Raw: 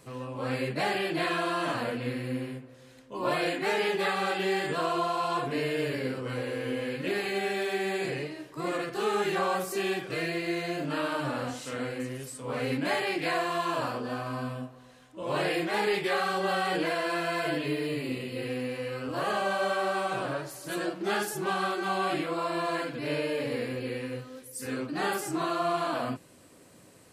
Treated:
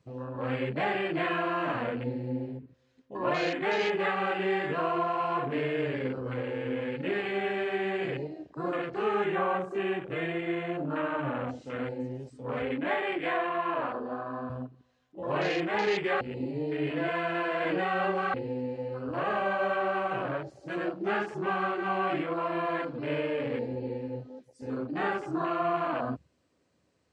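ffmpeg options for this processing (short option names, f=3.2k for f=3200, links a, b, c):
-filter_complex "[0:a]asettb=1/sr,asplit=3[a][b][c];[a]atrim=end=9.244[d];[b]atrim=start=9.24:end=11.49,asetpts=PTS-STARTPTS,afade=t=in:d=0.004:c=qsin,afade=t=out:st=2.246:d=0.004:c=qsin,equalizer=f=4.9k:w=1.7:g=-12[e];[c]atrim=start=11.486[f];[d][e]acrossfade=d=0.004:c1=hsin:c2=qsin[g];[g][f]acrossfade=d=0.004:c1=qsin:c2=hsin,asettb=1/sr,asplit=3[h][i][j];[h]atrim=end=12.624[k];[i]atrim=start=12.62:end=14.5,asetpts=PTS-STARTPTS,afade=t=in:d=0.004:c=qsin,afade=t=out:st=1.876:d=0.004:c=qsin,highpass=230,lowpass=3.3k[l];[j]atrim=start=14.496[m];[k][l]acrossfade=d=0.004:c1=hsin:c2=qsin[n];[n][m]acrossfade=d=0.004:c1=qsin:c2=hsin,asplit=3[o][p][q];[o]atrim=end=16.212[r];[p]atrim=start=16.208:end=18.342,asetpts=PTS-STARTPTS,areverse[s];[q]atrim=start=18.338[t];[r][s]acrossfade=d=0.004:c1=hsin:c2=hsin[u];[u][t]acrossfade=d=0.004:c1=hsin:c2=hsin,lowpass=f=6.6k:w=0.5412,lowpass=f=6.6k:w=1.3066,afwtdn=0.0141,equalizer=f=72:t=o:w=0.21:g=13.5"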